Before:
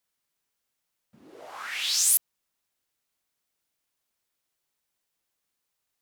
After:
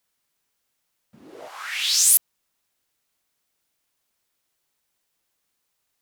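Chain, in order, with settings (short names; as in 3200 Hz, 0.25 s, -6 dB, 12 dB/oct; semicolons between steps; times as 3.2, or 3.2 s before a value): 1.48–2.15 HPF 1300 Hz 6 dB/oct; gain +5.5 dB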